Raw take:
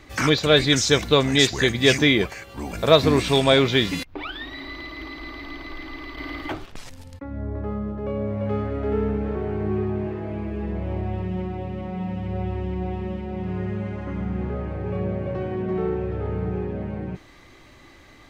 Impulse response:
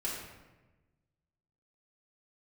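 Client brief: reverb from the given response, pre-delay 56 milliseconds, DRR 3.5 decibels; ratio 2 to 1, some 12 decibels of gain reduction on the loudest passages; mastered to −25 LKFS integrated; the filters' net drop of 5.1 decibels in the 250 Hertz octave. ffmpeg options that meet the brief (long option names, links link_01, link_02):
-filter_complex "[0:a]equalizer=frequency=250:width_type=o:gain=-7,acompressor=threshold=-33dB:ratio=2,asplit=2[link_01][link_02];[1:a]atrim=start_sample=2205,adelay=56[link_03];[link_02][link_03]afir=irnorm=-1:irlink=0,volume=-7.5dB[link_04];[link_01][link_04]amix=inputs=2:normalize=0,volume=6dB"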